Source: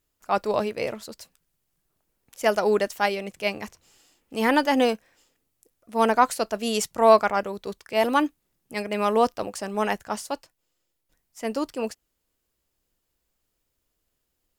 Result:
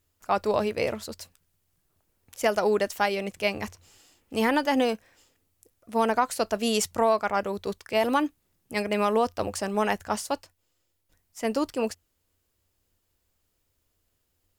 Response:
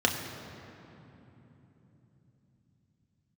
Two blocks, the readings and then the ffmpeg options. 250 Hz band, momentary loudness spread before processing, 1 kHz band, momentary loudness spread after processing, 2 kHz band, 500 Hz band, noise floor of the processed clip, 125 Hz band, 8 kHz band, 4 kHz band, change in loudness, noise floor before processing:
-1.0 dB, 14 LU, -3.0 dB, 10 LU, -2.0 dB, -2.5 dB, -75 dBFS, no reading, +0.5 dB, -1.0 dB, -2.5 dB, -78 dBFS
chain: -af "acompressor=threshold=0.0794:ratio=4,equalizer=f=89:w=5.5:g=14.5,volume=1.26"

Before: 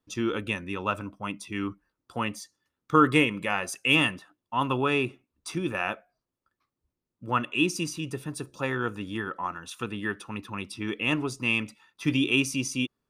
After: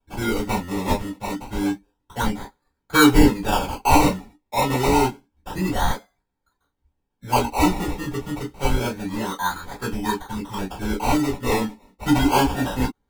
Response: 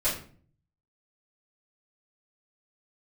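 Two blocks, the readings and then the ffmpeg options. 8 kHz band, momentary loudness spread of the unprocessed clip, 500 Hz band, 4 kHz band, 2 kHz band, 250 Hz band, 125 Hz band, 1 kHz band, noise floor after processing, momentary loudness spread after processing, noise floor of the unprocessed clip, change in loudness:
+7.0 dB, 14 LU, +6.5 dB, +2.5 dB, +1.0 dB, +7.5 dB, +7.5 dB, +8.5 dB, -76 dBFS, 13 LU, under -85 dBFS, +5.5 dB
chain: -filter_complex "[0:a]acrusher=samples=22:mix=1:aa=0.000001:lfo=1:lforange=13.2:lforate=0.28[s0];[1:a]atrim=start_sample=2205,atrim=end_sample=3528,asetrate=66150,aresample=44100[s1];[s0][s1]afir=irnorm=-1:irlink=0"

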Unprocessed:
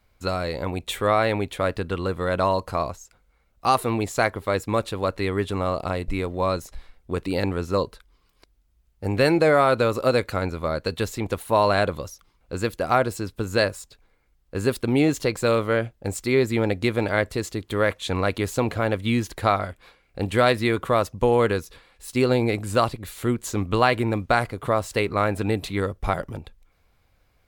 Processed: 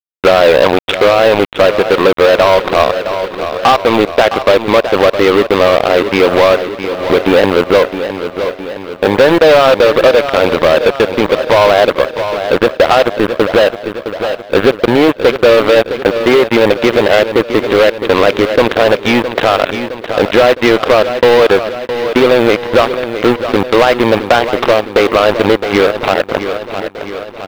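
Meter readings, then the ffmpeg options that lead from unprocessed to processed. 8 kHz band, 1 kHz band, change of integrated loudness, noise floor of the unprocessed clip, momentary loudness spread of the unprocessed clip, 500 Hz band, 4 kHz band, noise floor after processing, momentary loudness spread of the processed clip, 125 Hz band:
no reading, +12.0 dB, +13.0 dB, -64 dBFS, 9 LU, +15.5 dB, +15.5 dB, -28 dBFS, 10 LU, +3.0 dB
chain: -af "equalizer=f=560:w=1.6:g=5.5,acompressor=threshold=0.0631:ratio=12,highpass=310,lowpass=2400,aresample=8000,acrusher=bits=4:mix=0:aa=0.5,aresample=44100,asoftclip=type=tanh:threshold=0.0376,acrusher=bits=7:mode=log:mix=0:aa=0.000001,aecho=1:1:663|1326|1989|2652|3315|3978:0.211|0.118|0.0663|0.0371|0.0208|0.0116,acontrast=83,alimiter=level_in=15.8:limit=0.891:release=50:level=0:latency=1,volume=0.891"

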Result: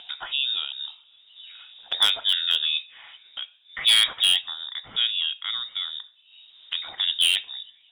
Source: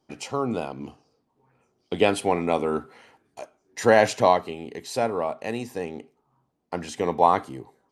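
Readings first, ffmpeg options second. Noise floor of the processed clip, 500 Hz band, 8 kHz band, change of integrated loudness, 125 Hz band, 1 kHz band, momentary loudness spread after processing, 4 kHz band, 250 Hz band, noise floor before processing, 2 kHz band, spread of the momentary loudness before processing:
-58 dBFS, under -25 dB, +5.5 dB, +2.0 dB, under -20 dB, -17.0 dB, 18 LU, +20.0 dB, under -25 dB, -73 dBFS, +1.0 dB, 21 LU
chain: -af "lowpass=f=3300:t=q:w=0.5098,lowpass=f=3300:t=q:w=0.6013,lowpass=f=3300:t=q:w=0.9,lowpass=f=3300:t=q:w=2.563,afreqshift=-3900,acompressor=mode=upward:threshold=0.0447:ratio=2.5,aeval=exprs='0.299*(abs(mod(val(0)/0.299+3,4)-2)-1)':c=same"

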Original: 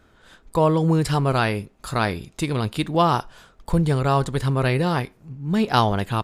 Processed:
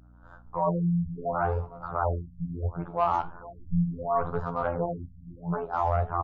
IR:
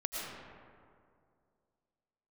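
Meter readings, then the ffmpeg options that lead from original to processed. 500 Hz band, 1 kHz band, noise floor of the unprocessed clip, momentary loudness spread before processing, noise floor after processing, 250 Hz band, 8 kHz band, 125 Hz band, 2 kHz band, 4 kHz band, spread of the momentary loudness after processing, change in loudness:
-6.5 dB, -5.0 dB, -57 dBFS, 8 LU, -51 dBFS, -9.0 dB, under -30 dB, -9.0 dB, -13.0 dB, under -25 dB, 10 LU, -7.5 dB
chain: -filter_complex "[0:a]agate=range=0.0224:threshold=0.00447:ratio=3:detection=peak,firequalizer=gain_entry='entry(120,0);entry(220,-14);entry(670,5);entry(1400,3);entry(2000,-25)':delay=0.05:min_phase=1,areverse,acompressor=threshold=0.0891:ratio=12,areverse,asoftclip=type=hard:threshold=0.15,afftfilt=real='hypot(re,im)*cos(PI*b)':imag='0':win_size=2048:overlap=0.75,aeval=exprs='val(0)+0.00141*(sin(2*PI*60*n/s)+sin(2*PI*2*60*n/s)/2+sin(2*PI*3*60*n/s)/3+sin(2*PI*4*60*n/s)/4+sin(2*PI*5*60*n/s)/5)':c=same,asoftclip=type=tanh:threshold=0.141,flanger=delay=9.9:depth=5.2:regen=-69:speed=1.1:shape=sinusoidal,asplit=2[s0][s1];[s1]adelay=462,lowpass=f=890:p=1,volume=0.178,asplit=2[s2][s3];[s3]adelay=462,lowpass=f=890:p=1,volume=0.34,asplit=2[s4][s5];[s5]adelay=462,lowpass=f=890:p=1,volume=0.34[s6];[s0][s2][s4][s6]amix=inputs=4:normalize=0,afftfilt=real='re*lt(b*sr/1024,250*pow(7700/250,0.5+0.5*sin(2*PI*0.72*pts/sr)))':imag='im*lt(b*sr/1024,250*pow(7700/250,0.5+0.5*sin(2*PI*0.72*pts/sr)))':win_size=1024:overlap=0.75,volume=2.66"

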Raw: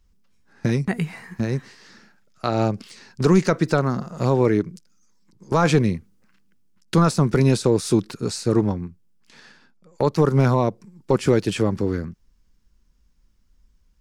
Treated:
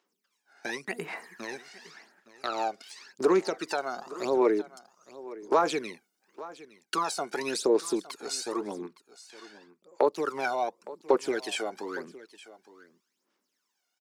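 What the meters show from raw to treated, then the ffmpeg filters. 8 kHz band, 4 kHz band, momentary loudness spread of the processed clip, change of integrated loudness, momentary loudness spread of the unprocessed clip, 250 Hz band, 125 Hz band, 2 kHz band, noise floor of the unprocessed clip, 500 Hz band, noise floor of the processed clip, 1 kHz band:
-4.0 dB, -4.0 dB, 20 LU, -8.5 dB, 12 LU, -12.5 dB, -32.0 dB, -4.5 dB, -61 dBFS, -6.0 dB, -80 dBFS, -4.0 dB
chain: -af "highpass=f=360:w=0.5412,highpass=f=360:w=1.3066,bandreject=f=500:w=12,aphaser=in_gain=1:out_gain=1:delay=1.4:decay=0.72:speed=0.9:type=sinusoidal,acompressor=threshold=0.0562:ratio=1.5,aecho=1:1:863:0.126,volume=0.562"

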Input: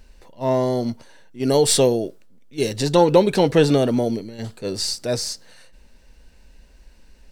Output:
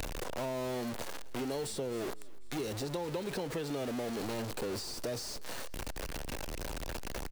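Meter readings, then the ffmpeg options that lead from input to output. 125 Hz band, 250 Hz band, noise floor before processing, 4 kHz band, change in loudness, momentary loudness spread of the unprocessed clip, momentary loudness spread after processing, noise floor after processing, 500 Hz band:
-16.5 dB, -16.5 dB, -51 dBFS, -15.0 dB, -18.5 dB, 15 LU, 6 LU, -40 dBFS, -18.0 dB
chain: -filter_complex "[0:a]aeval=exprs='val(0)+0.5*0.141*sgn(val(0))':c=same,acompressor=threshold=0.0708:ratio=6,asplit=2[s0][s1];[s1]asplit=3[s2][s3][s4];[s2]adelay=249,afreqshift=-48,volume=0.0631[s5];[s3]adelay=498,afreqshift=-96,volume=0.0272[s6];[s4]adelay=747,afreqshift=-144,volume=0.0116[s7];[s5][s6][s7]amix=inputs=3:normalize=0[s8];[s0][s8]amix=inputs=2:normalize=0,acrossover=split=300|1100[s9][s10][s11];[s9]acompressor=threshold=0.0178:ratio=4[s12];[s10]acompressor=threshold=0.0355:ratio=4[s13];[s11]acompressor=threshold=0.0178:ratio=4[s14];[s12][s13][s14]amix=inputs=3:normalize=0,volume=0.447"

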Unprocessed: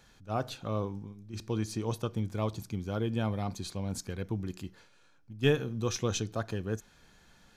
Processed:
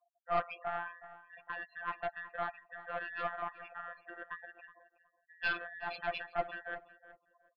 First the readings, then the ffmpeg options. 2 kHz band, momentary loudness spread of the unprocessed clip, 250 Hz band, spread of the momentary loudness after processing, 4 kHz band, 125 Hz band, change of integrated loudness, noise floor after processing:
+5.5 dB, 10 LU, -22.0 dB, 17 LU, -9.0 dB, -27.0 dB, -5.5 dB, -79 dBFS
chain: -filter_complex "[0:a]afftfilt=real='real(if(between(b,1,1012),(2*floor((b-1)/92)+1)*92-b,b),0)':imag='imag(if(between(b,1,1012),(2*floor((b-1)/92)+1)*92-b,b),0)*if(between(b,1,1012),-1,1)':win_size=2048:overlap=0.75,asplit=3[s0][s1][s2];[s0]bandpass=f=730:t=q:w=8,volume=1[s3];[s1]bandpass=f=1090:t=q:w=8,volume=0.501[s4];[s2]bandpass=f=2440:t=q:w=8,volume=0.355[s5];[s3][s4][s5]amix=inputs=3:normalize=0,aemphasis=mode=reproduction:type=riaa,afftfilt=real='re*gte(hypot(re,im),0.00112)':imag='im*gte(hypot(re,im),0.00112)':win_size=1024:overlap=0.75,aecho=1:1:5.6:0.47,acrossover=split=1900[s6][s7];[s7]acontrast=87[s8];[s6][s8]amix=inputs=2:normalize=0,afftfilt=real='hypot(re,im)*cos(PI*b)':imag='0':win_size=1024:overlap=0.75,aeval=exprs='(tanh(70.8*val(0)+0.45)-tanh(0.45))/70.8':c=same,asplit=2[s9][s10];[s10]adelay=370,lowpass=f=2400:p=1,volume=0.178,asplit=2[s11][s12];[s12]adelay=370,lowpass=f=2400:p=1,volume=0.21[s13];[s11][s13]amix=inputs=2:normalize=0[s14];[s9][s14]amix=inputs=2:normalize=0,aresample=11025,aresample=44100,volume=5.96"

